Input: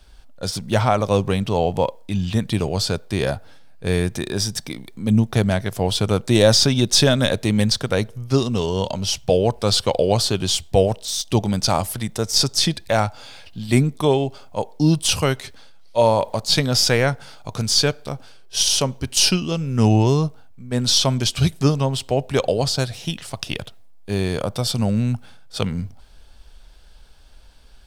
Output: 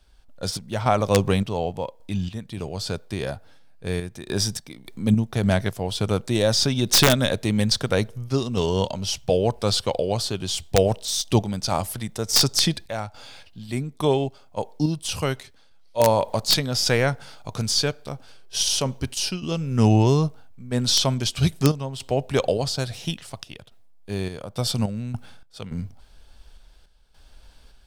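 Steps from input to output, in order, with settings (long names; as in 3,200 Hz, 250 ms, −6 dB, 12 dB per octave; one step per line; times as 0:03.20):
sample-and-hold tremolo, depth 80%
wrap-around overflow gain 6.5 dB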